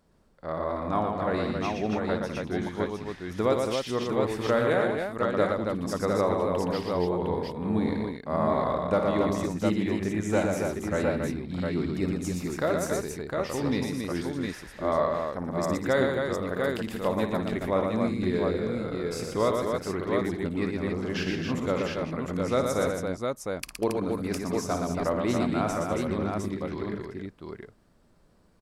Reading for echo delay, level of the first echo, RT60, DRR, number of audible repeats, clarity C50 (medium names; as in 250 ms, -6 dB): 56 ms, -9.0 dB, no reverb, no reverb, 5, no reverb